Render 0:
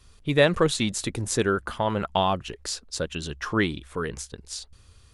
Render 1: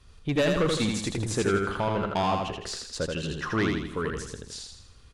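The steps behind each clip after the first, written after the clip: low-pass 3.8 kHz 6 dB/octave; saturation -19.5 dBFS, distortion -10 dB; feedback delay 81 ms, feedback 47%, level -3.5 dB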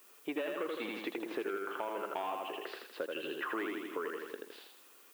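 elliptic band-pass 320–2900 Hz, stop band 50 dB; compression 5:1, threshold -35 dBFS, peak gain reduction 12.5 dB; added noise blue -61 dBFS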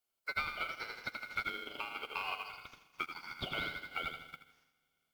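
Schroeder reverb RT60 3.5 s, combs from 28 ms, DRR 6.5 dB; ring modulator 1.8 kHz; upward expansion 2.5:1, over -55 dBFS; trim +5 dB

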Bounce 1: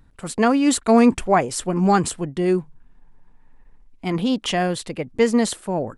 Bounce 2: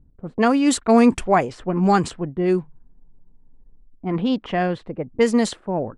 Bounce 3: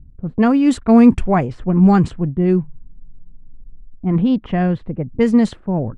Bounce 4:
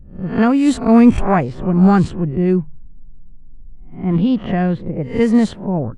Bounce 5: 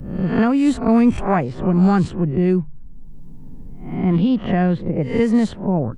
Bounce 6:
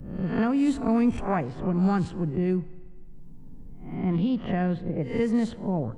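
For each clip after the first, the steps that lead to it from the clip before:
level-controlled noise filter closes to 360 Hz, open at -12.5 dBFS
tone controls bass +14 dB, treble -9 dB; trim -1.5 dB
reverse spectral sustain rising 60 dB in 0.40 s
three bands compressed up and down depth 70%; trim -2.5 dB
FDN reverb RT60 1.6 s, low-frequency decay 1×, high-frequency decay 0.95×, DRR 16.5 dB; trim -8 dB

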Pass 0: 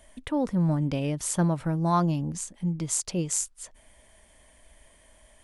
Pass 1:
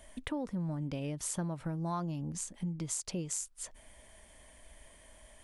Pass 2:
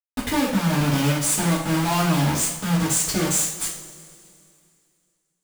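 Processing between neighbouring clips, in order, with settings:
compression 4:1, threshold -35 dBFS, peak gain reduction 13.5 dB
companded quantiser 2-bit; two-slope reverb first 0.47 s, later 2.5 s, from -18 dB, DRR -7.5 dB

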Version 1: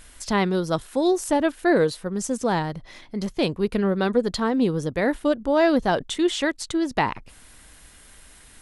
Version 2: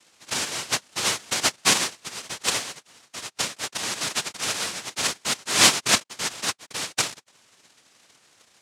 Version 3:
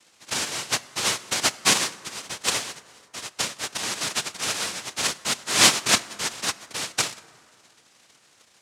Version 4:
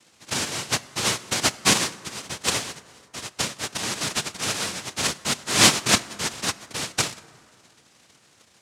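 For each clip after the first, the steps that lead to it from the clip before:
small resonant body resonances 690/1600 Hz, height 17 dB, ringing for 45 ms; noise-vocoded speech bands 1; trim -9.5 dB
plate-style reverb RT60 2.2 s, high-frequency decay 0.45×, DRR 16.5 dB
bass shelf 300 Hz +9 dB

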